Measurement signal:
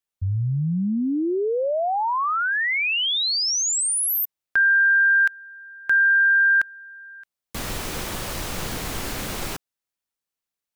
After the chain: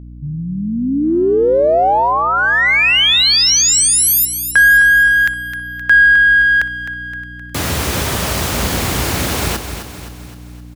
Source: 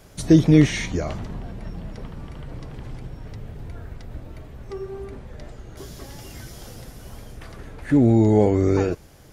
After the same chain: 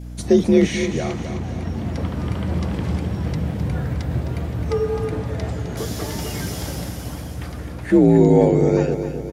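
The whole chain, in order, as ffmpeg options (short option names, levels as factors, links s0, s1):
-filter_complex "[0:a]adynamicequalizer=threshold=0.0178:dfrequency=1100:dqfactor=1.9:tfrequency=1100:tqfactor=1.9:attack=5:release=100:ratio=0.375:range=3:mode=cutabove:tftype=bell,dynaudnorm=f=150:g=13:m=3.98,asplit=2[s0][s1];[s1]aeval=exprs='clip(val(0),-1,0.266)':c=same,volume=0.282[s2];[s0][s2]amix=inputs=2:normalize=0,afreqshift=51,aeval=exprs='val(0)+0.0355*(sin(2*PI*60*n/s)+sin(2*PI*2*60*n/s)/2+sin(2*PI*3*60*n/s)/3+sin(2*PI*4*60*n/s)/4+sin(2*PI*5*60*n/s)/5)':c=same,asplit=2[s3][s4];[s4]aecho=0:1:260|520|780|1040|1300|1560:0.335|0.171|0.0871|0.0444|0.0227|0.0116[s5];[s3][s5]amix=inputs=2:normalize=0,volume=0.708"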